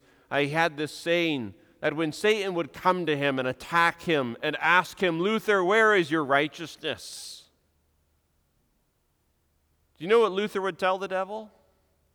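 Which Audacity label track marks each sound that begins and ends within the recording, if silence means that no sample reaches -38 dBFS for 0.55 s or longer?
10.010000	11.440000	sound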